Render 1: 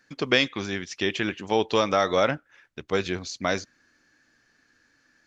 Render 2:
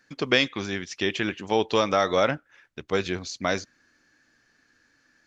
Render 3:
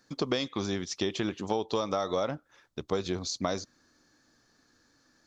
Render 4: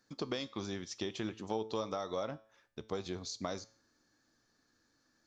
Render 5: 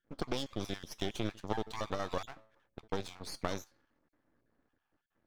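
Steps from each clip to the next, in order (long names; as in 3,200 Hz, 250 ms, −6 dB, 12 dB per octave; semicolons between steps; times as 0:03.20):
no processing that can be heard
flat-topped bell 2,100 Hz −9.5 dB 1.2 octaves; downward compressor 6 to 1, threshold −28 dBFS, peak gain reduction 10.5 dB; level +2 dB
tuned comb filter 110 Hz, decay 0.52 s, harmonics all, mix 50%; level −3 dB
time-frequency cells dropped at random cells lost 27%; low-pass that shuts in the quiet parts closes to 1,000 Hz, open at −36.5 dBFS; half-wave rectification; level +5.5 dB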